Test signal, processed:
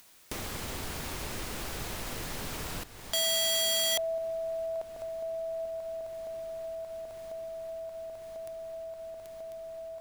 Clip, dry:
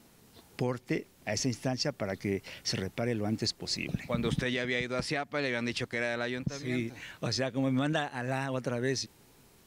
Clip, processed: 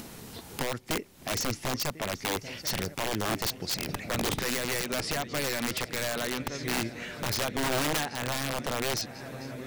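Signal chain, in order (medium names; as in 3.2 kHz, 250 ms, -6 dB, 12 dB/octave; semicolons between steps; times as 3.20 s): shuffle delay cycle 1045 ms, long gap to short 3:1, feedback 72%, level -19.5 dB; integer overflow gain 25 dB; upward compressor, threshold -35 dBFS; trim +2.5 dB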